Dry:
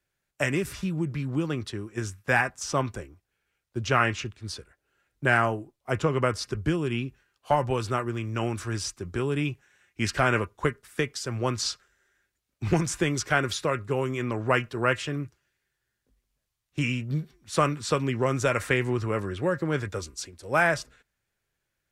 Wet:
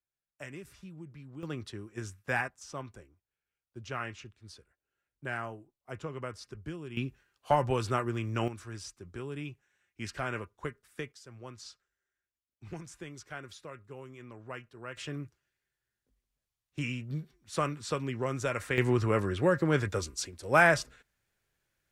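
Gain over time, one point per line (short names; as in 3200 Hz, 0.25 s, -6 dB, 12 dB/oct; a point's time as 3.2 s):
-18 dB
from 1.43 s -8 dB
from 2.48 s -14.5 dB
from 6.97 s -2.5 dB
from 8.48 s -12 dB
from 11.12 s -19 dB
from 14.97 s -7.5 dB
from 18.78 s +0.5 dB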